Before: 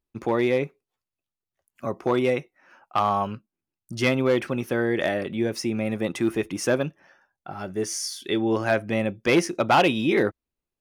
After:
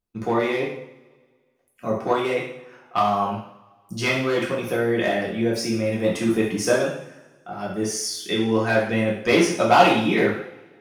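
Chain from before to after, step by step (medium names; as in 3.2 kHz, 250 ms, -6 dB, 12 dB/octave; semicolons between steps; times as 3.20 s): harmonic-percussive split percussive +5 dB; two-slope reverb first 0.6 s, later 1.7 s, from -20 dB, DRR -4.5 dB; trim -6 dB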